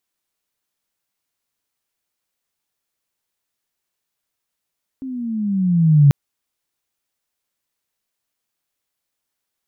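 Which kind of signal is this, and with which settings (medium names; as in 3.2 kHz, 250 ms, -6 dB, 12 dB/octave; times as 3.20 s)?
gliding synth tone sine, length 1.09 s, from 269 Hz, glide -11.5 st, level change +20 dB, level -6 dB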